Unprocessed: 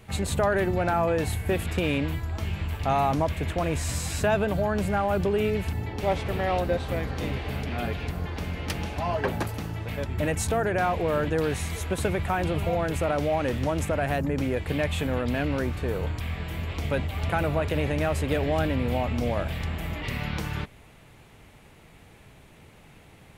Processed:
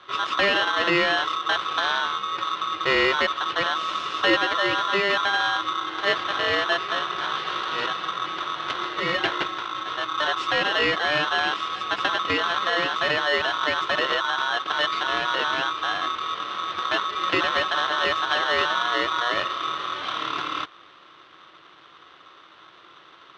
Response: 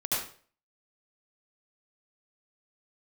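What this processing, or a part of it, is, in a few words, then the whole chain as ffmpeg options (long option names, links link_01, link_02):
ring modulator pedal into a guitar cabinet: -filter_complex "[0:a]asettb=1/sr,asplit=3[link_01][link_02][link_03];[link_01]atrim=end=7.354[link_04];[link_02]atrim=start=7.35:end=7.86,asetpts=PTS-STARTPTS,afade=type=in:duration=0.004:curve=qsin,afade=type=out:start_time=0.506:duration=0.004:curve=qsin,highshelf=frequency=3400:gain=10[link_05];[link_03]atrim=start=7.856[link_06];[link_04][link_05]acrossfade=duration=0.004:curve1=hsin:curve2=qsin[link_07];[link_07][link_06]acrossfade=duration=0.004:curve1=qsin:curve2=hsin,aeval=exprs='val(0)*sgn(sin(2*PI*1200*n/s))':channel_layout=same,highpass=100,equalizer=frequency=110:width_type=q:width=4:gain=-4,equalizer=frequency=230:width_type=q:width=4:gain=-7,equalizer=frequency=330:width_type=q:width=4:gain=8,equalizer=frequency=840:width_type=q:width=4:gain=-5,equalizer=frequency=2900:width_type=q:width=4:gain=5,lowpass=frequency=4100:width=0.5412,lowpass=frequency=4100:width=1.3066,volume=2.5dB"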